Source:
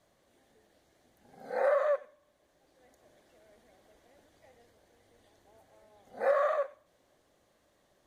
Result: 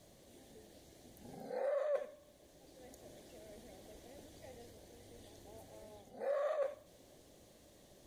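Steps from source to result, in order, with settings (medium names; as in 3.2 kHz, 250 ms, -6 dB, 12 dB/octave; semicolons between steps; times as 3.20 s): peaking EQ 1.3 kHz -13.5 dB 1.7 oct; reverse; compression 8:1, threshold -46 dBFS, peak gain reduction 18 dB; reverse; trim +11 dB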